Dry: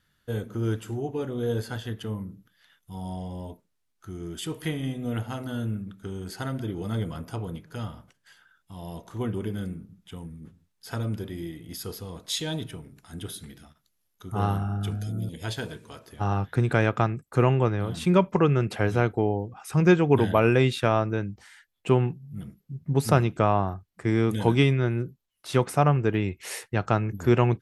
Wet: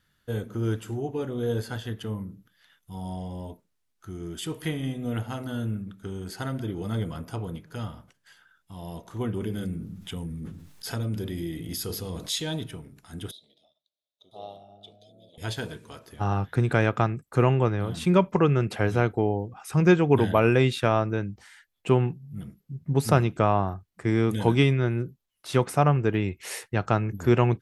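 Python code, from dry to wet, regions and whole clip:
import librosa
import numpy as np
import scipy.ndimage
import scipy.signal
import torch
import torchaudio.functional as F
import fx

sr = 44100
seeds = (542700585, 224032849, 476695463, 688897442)

y = fx.chain(x, sr, fx.hum_notches(base_hz=50, count=7),
    fx.dynamic_eq(hz=1100.0, q=0.74, threshold_db=-53.0, ratio=4.0, max_db=-5),
    fx.env_flatten(amount_pct=50), at=(9.41, 12.34))
y = fx.chain(y, sr, fx.double_bandpass(hz=1500.0, octaves=2.6),
    fx.echo_single(ms=1000, db=-16.0), at=(13.31, 15.38))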